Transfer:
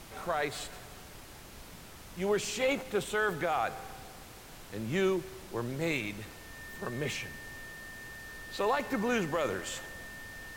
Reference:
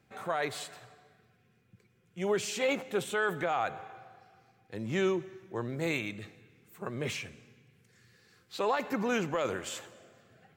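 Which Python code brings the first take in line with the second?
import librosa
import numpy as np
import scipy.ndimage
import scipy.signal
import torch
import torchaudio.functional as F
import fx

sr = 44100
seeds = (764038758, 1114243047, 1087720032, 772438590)

y = fx.notch(x, sr, hz=1800.0, q=30.0)
y = fx.noise_reduce(y, sr, print_start_s=4.2, print_end_s=4.7, reduce_db=17.0)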